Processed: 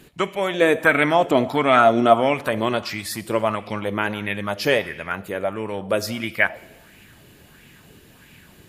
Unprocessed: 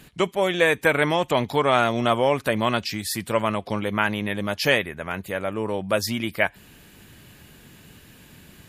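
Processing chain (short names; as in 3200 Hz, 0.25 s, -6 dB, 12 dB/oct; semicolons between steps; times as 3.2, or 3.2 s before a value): 0.61–2.34 small resonant body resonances 270/670/1300 Hz, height 9 dB; reverb RT60 1.0 s, pre-delay 22 ms, DRR 15 dB; LFO bell 1.5 Hz 350–2500 Hz +9 dB; gain -2 dB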